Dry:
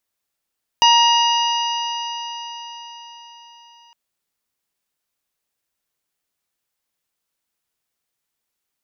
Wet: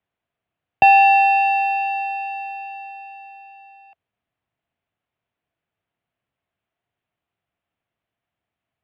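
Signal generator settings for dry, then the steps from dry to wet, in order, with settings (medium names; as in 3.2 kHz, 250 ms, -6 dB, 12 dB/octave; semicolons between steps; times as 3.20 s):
stretched partials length 3.11 s, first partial 937 Hz, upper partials -16/-2/-20/-9.5/-11 dB, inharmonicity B 0.0032, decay 4.76 s, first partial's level -11 dB
bass shelf 480 Hz +5.5 dB; small resonant body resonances 250/830 Hz, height 9 dB, ringing for 35 ms; mistuned SSB -150 Hz 230–3300 Hz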